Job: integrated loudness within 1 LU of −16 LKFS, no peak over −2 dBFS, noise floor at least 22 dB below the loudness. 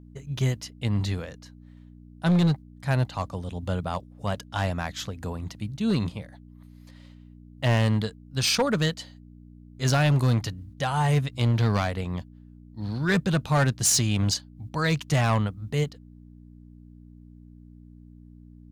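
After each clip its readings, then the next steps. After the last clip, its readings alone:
share of clipped samples 1.2%; peaks flattened at −17.0 dBFS; mains hum 60 Hz; hum harmonics up to 300 Hz; level of the hum −48 dBFS; integrated loudness −26.0 LKFS; sample peak −17.0 dBFS; target loudness −16.0 LKFS
→ clipped peaks rebuilt −17 dBFS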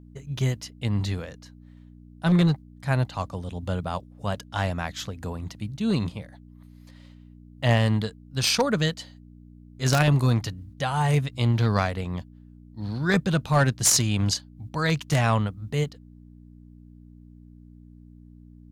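share of clipped samples 0.0%; mains hum 60 Hz; hum harmonics up to 300 Hz; level of the hum −48 dBFS
→ hum removal 60 Hz, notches 5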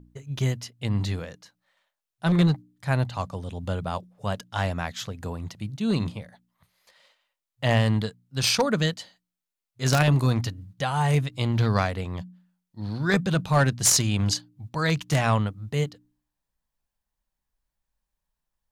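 mains hum none found; integrated loudness −25.5 LKFS; sample peak −7.5 dBFS; target loudness −16.0 LKFS
→ level +9.5 dB
brickwall limiter −2 dBFS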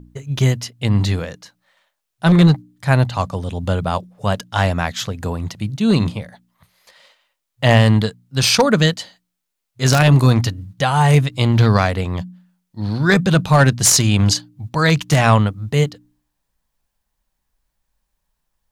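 integrated loudness −16.5 LKFS; sample peak −2.0 dBFS; background noise floor −77 dBFS

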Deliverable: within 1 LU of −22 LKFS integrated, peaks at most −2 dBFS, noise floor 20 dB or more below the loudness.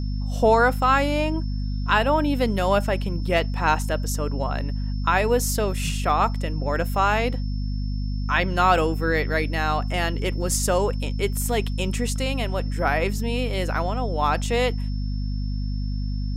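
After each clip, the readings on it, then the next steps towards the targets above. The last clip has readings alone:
mains hum 50 Hz; hum harmonics up to 250 Hz; level of the hum −24 dBFS; interfering tone 5,300 Hz; level of the tone −46 dBFS; integrated loudness −23.5 LKFS; sample peak −5.5 dBFS; target loudness −22.0 LKFS
→ hum removal 50 Hz, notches 5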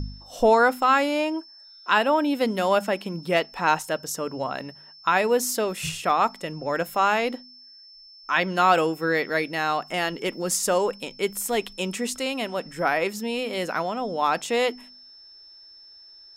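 mains hum none found; interfering tone 5,300 Hz; level of the tone −46 dBFS
→ notch filter 5,300 Hz, Q 30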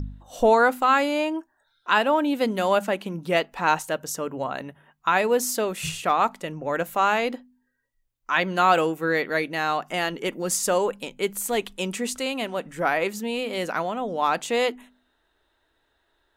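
interfering tone none found; integrated loudness −24.0 LKFS; sample peak −6.0 dBFS; target loudness −22.0 LKFS
→ level +2 dB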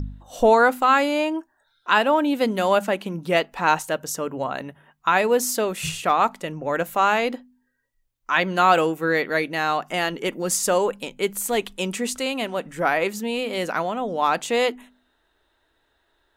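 integrated loudness −22.0 LKFS; sample peak −4.0 dBFS; background noise floor −69 dBFS

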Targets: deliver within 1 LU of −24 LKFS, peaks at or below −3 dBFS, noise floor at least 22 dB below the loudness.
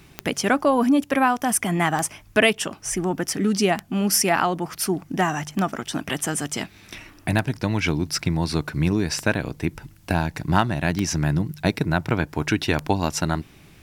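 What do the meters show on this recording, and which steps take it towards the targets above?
number of clicks 8; integrated loudness −23.0 LKFS; sample peak −3.5 dBFS; target loudness −24.0 LKFS
→ click removal
level −1 dB

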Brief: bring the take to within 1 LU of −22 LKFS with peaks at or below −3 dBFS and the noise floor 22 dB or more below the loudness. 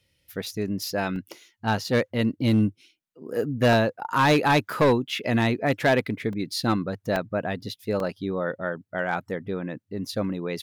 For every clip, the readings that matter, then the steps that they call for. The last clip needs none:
share of clipped samples 0.8%; peaks flattened at −14.0 dBFS; number of dropouts 5; longest dropout 1.9 ms; integrated loudness −25.5 LKFS; sample peak −14.0 dBFS; target loudness −22.0 LKFS
→ clipped peaks rebuilt −14 dBFS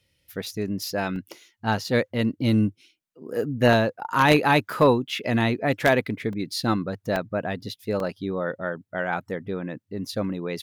share of clipped samples 0.0%; number of dropouts 5; longest dropout 1.9 ms
→ repair the gap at 0:01.16/0:03.73/0:06.33/0:07.16/0:08.00, 1.9 ms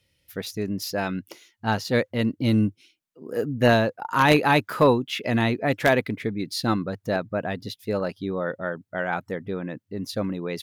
number of dropouts 0; integrated loudness −25.0 LKFS; sample peak −5.0 dBFS; target loudness −22.0 LKFS
→ level +3 dB
brickwall limiter −3 dBFS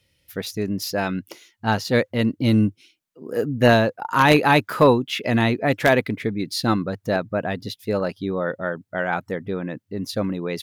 integrated loudness −22.0 LKFS; sample peak −3.0 dBFS; background noise floor −70 dBFS

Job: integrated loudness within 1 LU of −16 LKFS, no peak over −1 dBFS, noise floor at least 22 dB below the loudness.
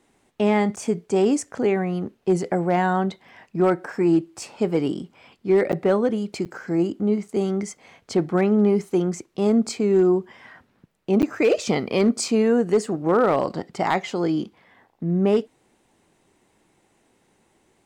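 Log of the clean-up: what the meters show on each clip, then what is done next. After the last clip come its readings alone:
share of clipped samples 0.3%; peaks flattened at −11.5 dBFS; number of dropouts 4; longest dropout 8.8 ms; integrated loudness −22.0 LKFS; sample peak −11.5 dBFS; target loudness −16.0 LKFS
→ clipped peaks rebuilt −11.5 dBFS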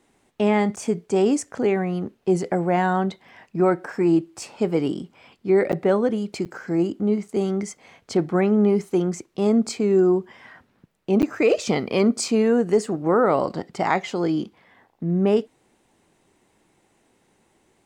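share of clipped samples 0.0%; number of dropouts 4; longest dropout 8.8 ms
→ repair the gap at 0:00.76/0:05.72/0:06.45/0:11.22, 8.8 ms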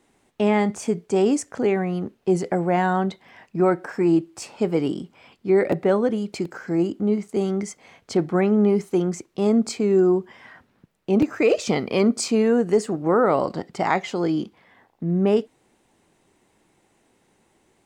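number of dropouts 0; integrated loudness −22.0 LKFS; sample peak −5.5 dBFS; target loudness −16.0 LKFS
→ level +6 dB
brickwall limiter −1 dBFS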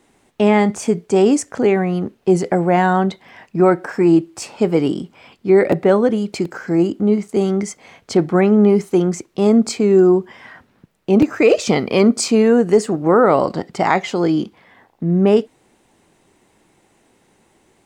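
integrated loudness −16.0 LKFS; sample peak −1.0 dBFS; background noise floor −59 dBFS

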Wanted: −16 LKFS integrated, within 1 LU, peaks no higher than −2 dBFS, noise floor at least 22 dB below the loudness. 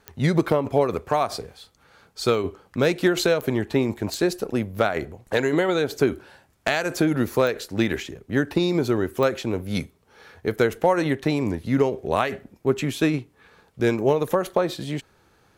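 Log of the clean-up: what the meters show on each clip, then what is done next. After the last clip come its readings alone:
number of clicks 5; integrated loudness −24.0 LKFS; sample peak −8.0 dBFS; target loudness −16.0 LKFS
→ click removal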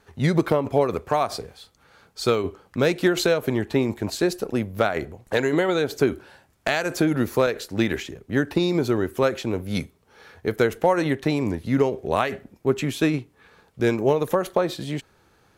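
number of clicks 0; integrated loudness −24.0 LKFS; sample peak −8.0 dBFS; target loudness −16.0 LKFS
→ level +8 dB
brickwall limiter −2 dBFS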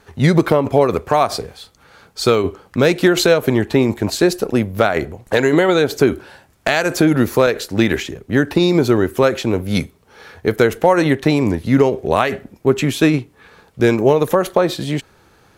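integrated loudness −16.5 LKFS; sample peak −2.0 dBFS; background noise floor −53 dBFS

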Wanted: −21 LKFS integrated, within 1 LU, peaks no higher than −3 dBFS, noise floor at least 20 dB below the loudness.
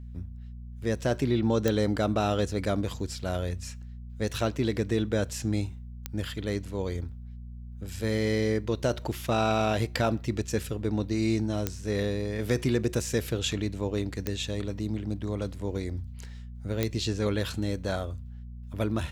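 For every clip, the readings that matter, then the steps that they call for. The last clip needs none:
number of clicks 5; mains hum 60 Hz; hum harmonics up to 240 Hz; level of the hum −38 dBFS; integrated loudness −29.5 LKFS; sample peak −9.0 dBFS; target loudness −21.0 LKFS
→ click removal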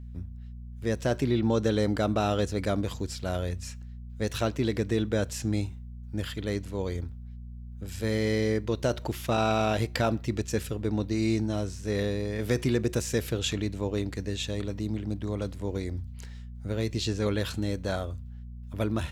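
number of clicks 0; mains hum 60 Hz; hum harmonics up to 240 Hz; level of the hum −38 dBFS
→ hum removal 60 Hz, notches 4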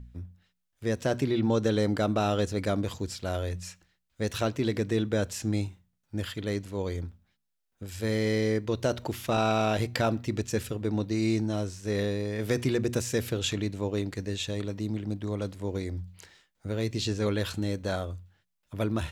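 mains hum none found; integrated loudness −30.0 LKFS; sample peak −9.5 dBFS; target loudness −21.0 LKFS
→ level +9 dB
brickwall limiter −3 dBFS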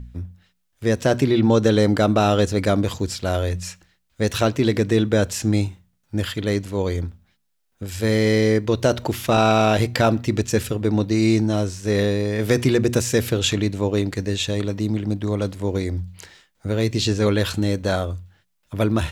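integrated loudness −21.0 LKFS; sample peak −3.0 dBFS; background noise floor −69 dBFS

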